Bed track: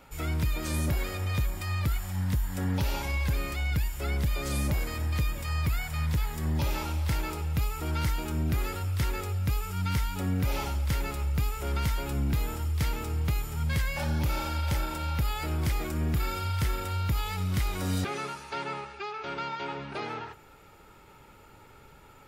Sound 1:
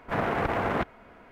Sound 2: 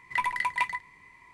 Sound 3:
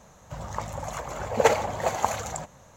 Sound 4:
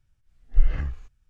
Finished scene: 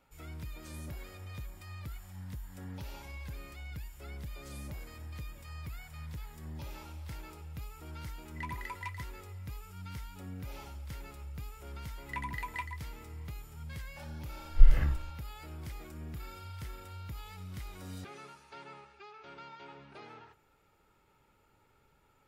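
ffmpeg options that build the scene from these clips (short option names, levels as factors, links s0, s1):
-filter_complex "[2:a]asplit=2[s0][s1];[0:a]volume=0.178[s2];[s0]asoftclip=type=hard:threshold=0.112,atrim=end=1.33,asetpts=PTS-STARTPTS,volume=0.2,afade=t=in:d=0.004:c=hsin,afade=t=out:st=1.326:d=0.004:c=hsin,adelay=8250[s3];[s1]atrim=end=1.33,asetpts=PTS-STARTPTS,volume=0.266,afade=t=in:d=0.004:c=hsin,afade=t=out:st=1.326:d=0.004:c=hsin,adelay=11980[s4];[4:a]atrim=end=1.29,asetpts=PTS-STARTPTS,volume=0.944,afade=t=in:d=0.004:c=hsin,afade=t=out:st=1.286:d=0.004:c=hsin,adelay=14030[s5];[s2][s3][s4][s5]amix=inputs=4:normalize=0"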